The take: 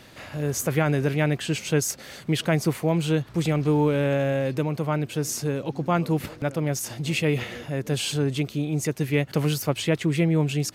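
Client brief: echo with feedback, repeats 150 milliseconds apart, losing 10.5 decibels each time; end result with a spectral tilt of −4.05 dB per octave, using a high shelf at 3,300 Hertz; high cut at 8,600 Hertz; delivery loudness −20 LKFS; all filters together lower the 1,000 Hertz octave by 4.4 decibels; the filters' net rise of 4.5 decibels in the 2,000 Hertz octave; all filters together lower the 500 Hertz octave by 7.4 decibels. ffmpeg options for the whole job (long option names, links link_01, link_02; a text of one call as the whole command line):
ffmpeg -i in.wav -af "lowpass=8600,equalizer=frequency=500:width_type=o:gain=-8,equalizer=frequency=1000:width_type=o:gain=-5.5,equalizer=frequency=2000:width_type=o:gain=5,highshelf=frequency=3300:gain=7,aecho=1:1:150|300|450:0.299|0.0896|0.0269,volume=5dB" out.wav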